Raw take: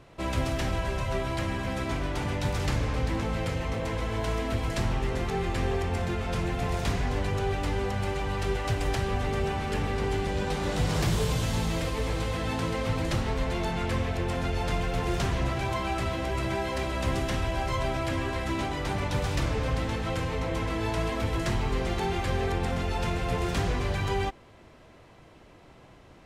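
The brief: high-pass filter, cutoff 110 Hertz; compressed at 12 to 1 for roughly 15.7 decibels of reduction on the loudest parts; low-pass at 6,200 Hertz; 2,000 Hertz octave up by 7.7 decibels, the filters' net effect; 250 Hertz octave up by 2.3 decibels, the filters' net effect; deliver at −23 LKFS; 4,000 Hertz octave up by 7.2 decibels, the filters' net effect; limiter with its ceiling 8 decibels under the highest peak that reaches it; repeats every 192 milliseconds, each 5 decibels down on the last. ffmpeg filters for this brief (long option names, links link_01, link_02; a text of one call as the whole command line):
ffmpeg -i in.wav -af "highpass=110,lowpass=6200,equalizer=frequency=250:width_type=o:gain=3.5,equalizer=frequency=2000:width_type=o:gain=7.5,equalizer=frequency=4000:width_type=o:gain=7,acompressor=threshold=-39dB:ratio=12,alimiter=level_in=10.5dB:limit=-24dB:level=0:latency=1,volume=-10.5dB,aecho=1:1:192|384|576|768|960|1152|1344:0.562|0.315|0.176|0.0988|0.0553|0.031|0.0173,volume=19dB" out.wav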